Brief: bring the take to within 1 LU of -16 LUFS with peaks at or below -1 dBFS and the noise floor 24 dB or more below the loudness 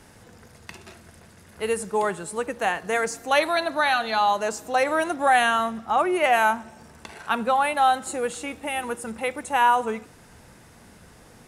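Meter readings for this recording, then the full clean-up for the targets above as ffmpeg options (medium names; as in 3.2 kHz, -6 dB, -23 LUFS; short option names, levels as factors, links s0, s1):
loudness -23.5 LUFS; peak level -6.0 dBFS; loudness target -16.0 LUFS
-> -af "volume=2.37,alimiter=limit=0.891:level=0:latency=1"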